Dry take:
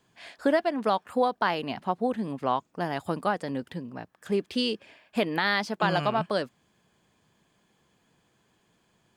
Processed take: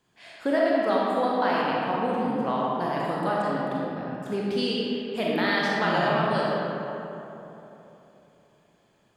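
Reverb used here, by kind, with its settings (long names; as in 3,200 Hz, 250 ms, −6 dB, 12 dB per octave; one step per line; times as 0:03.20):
comb and all-pass reverb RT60 3.3 s, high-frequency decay 0.5×, pre-delay 0 ms, DRR −5.5 dB
level −4 dB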